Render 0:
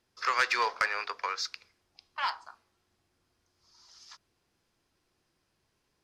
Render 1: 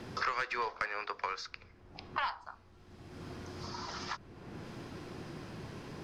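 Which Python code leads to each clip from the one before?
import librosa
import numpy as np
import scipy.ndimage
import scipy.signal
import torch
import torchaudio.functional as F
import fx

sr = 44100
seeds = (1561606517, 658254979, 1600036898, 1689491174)

y = fx.riaa(x, sr, side='playback')
y = fx.band_squash(y, sr, depth_pct=100)
y = y * librosa.db_to_amplitude(-1.0)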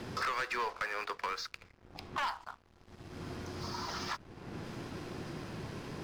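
y = fx.leveller(x, sr, passes=3)
y = y * librosa.db_to_amplitude(-8.5)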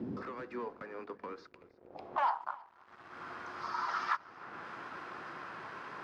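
y = fx.filter_sweep_bandpass(x, sr, from_hz=250.0, to_hz=1300.0, start_s=1.24, end_s=2.75, q=2.3)
y = y + 10.0 ** (-22.5 / 20.0) * np.pad(y, (int(319 * sr / 1000.0), 0))[:len(y)]
y = y * librosa.db_to_amplitude(9.5)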